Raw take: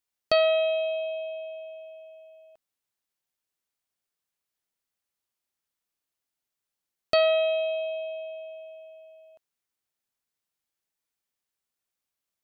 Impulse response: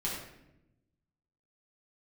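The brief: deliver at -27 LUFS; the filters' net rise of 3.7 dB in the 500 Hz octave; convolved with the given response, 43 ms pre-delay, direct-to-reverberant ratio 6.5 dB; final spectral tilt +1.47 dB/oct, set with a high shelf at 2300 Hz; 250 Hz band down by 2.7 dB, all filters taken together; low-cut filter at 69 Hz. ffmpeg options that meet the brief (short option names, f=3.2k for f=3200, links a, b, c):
-filter_complex "[0:a]highpass=69,equalizer=f=250:t=o:g=-7,equalizer=f=500:t=o:g=7.5,highshelf=f=2.3k:g=-7,asplit=2[a][b];[1:a]atrim=start_sample=2205,adelay=43[c];[b][c]afir=irnorm=-1:irlink=0,volume=-11dB[d];[a][d]amix=inputs=2:normalize=0,volume=-3.5dB"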